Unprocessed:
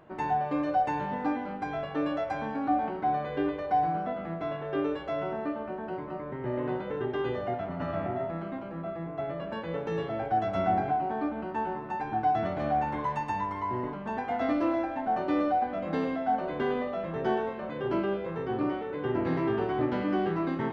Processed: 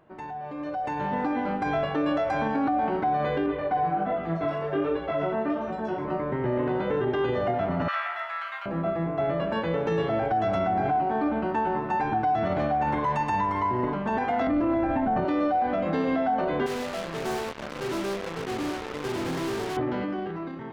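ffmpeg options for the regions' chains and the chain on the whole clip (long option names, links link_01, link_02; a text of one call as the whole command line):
ffmpeg -i in.wav -filter_complex "[0:a]asettb=1/sr,asplit=3[link_01][link_02][link_03];[link_01]atrim=end=3.464[link_04];[link_02]atrim=start=3.46:end=6.05,asetpts=PTS-STARTPTS,afade=type=in:duration=0.004:curve=qsin,afade=type=out:start_time=2.586:duration=0.004:curve=qsin,acrossover=split=4300[link_05][link_06];[link_06]adelay=770[link_07];[link_05][link_07]amix=inputs=2:normalize=0,atrim=end_sample=114219,flanger=delay=17.5:depth=4.9:speed=1.3[link_08];[link_03]atrim=start=6.046[link_09];[link_04][link_08]acrossfade=duration=0.004:curve1=hsin:curve2=qsin[link_10];[link_10][link_09]acrossfade=duration=0.004:curve1=qsin:curve2=hsin,asettb=1/sr,asplit=3[link_11][link_12][link_13];[link_11]atrim=end=7.884[link_14];[link_12]atrim=start=7.88:end=8.66,asetpts=PTS-STARTPTS,afade=type=in:duration=0.004:curve=qsin,afade=type=out:start_time=0.776:duration=0.004:curve=qsin,highpass=frequency=1300:width=0.5412,highpass=frequency=1300:width=1.3066,acontrast=74[link_15];[link_13]atrim=start=8.656[link_16];[link_14][link_15]acrossfade=duration=0.004:curve1=hsin:curve2=qsin[link_17];[link_17][link_16]acrossfade=duration=0.004:curve1=qsin:curve2=hsin,asettb=1/sr,asplit=3[link_18][link_19][link_20];[link_18]atrim=end=14.474[link_21];[link_19]atrim=start=14.47:end=15.25,asetpts=PTS-STARTPTS,afade=type=in:duration=0.004:curve=qsin,afade=type=out:start_time=0.776:duration=0.004:curve=qsin,acrossover=split=2900[link_22][link_23];[link_23]acompressor=threshold=-58dB:ratio=4:attack=1:release=60[link_24];[link_22][link_24]amix=inputs=2:normalize=0,bass=frequency=250:gain=12,treble=frequency=4000:gain=-6[link_25];[link_20]atrim=start=15.246[link_26];[link_21][link_25]acrossfade=duration=0.004:curve1=hsin:curve2=qsin[link_27];[link_27][link_26]acrossfade=duration=0.004:curve1=qsin:curve2=hsin,asettb=1/sr,asplit=3[link_28][link_29][link_30];[link_28]atrim=end=16.664[link_31];[link_29]atrim=start=16.66:end=19.77,asetpts=PTS-STARTPTS,afade=type=in:duration=0.004:curve=qsin,afade=type=out:start_time=3.106:duration=0.004:curve=qsin,highpass=80,asoftclip=type=hard:threshold=-31dB,acrusher=bits=4:mix=0:aa=0.5[link_32];[link_30]atrim=start=19.766[link_33];[link_31][link_32]acrossfade=duration=0.004:curve1=hsin:curve2=qsin[link_34];[link_34][link_33]acrossfade=duration=0.004:curve1=qsin:curve2=hsin,alimiter=level_in=2.5dB:limit=-24dB:level=0:latency=1:release=40,volume=-2.5dB,dynaudnorm=framelen=210:gausssize=9:maxgain=12.5dB,volume=-4dB" out.wav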